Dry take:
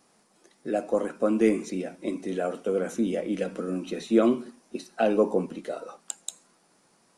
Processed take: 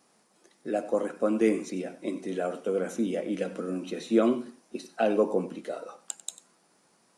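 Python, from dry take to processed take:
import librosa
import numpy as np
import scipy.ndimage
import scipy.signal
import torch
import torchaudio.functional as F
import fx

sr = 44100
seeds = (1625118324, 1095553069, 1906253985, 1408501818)

y = fx.low_shelf(x, sr, hz=69.0, db=-11.0)
y = y + 10.0 ** (-16.0 / 20.0) * np.pad(y, (int(95 * sr / 1000.0), 0))[:len(y)]
y = F.gain(torch.from_numpy(y), -1.5).numpy()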